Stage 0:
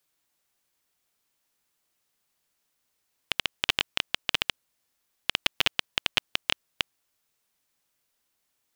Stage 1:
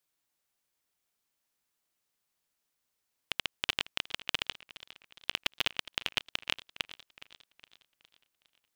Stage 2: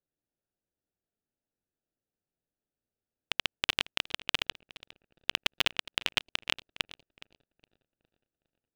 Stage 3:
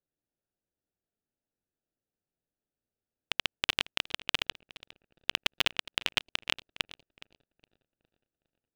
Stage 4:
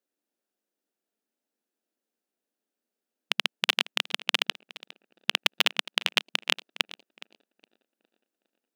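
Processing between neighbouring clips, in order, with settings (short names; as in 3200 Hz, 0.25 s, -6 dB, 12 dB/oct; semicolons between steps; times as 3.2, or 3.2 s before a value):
warbling echo 0.412 s, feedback 49%, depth 131 cents, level -17 dB; gain -6 dB
Wiener smoothing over 41 samples; gain +3 dB
nothing audible
brick-wall FIR high-pass 190 Hz; gain +5 dB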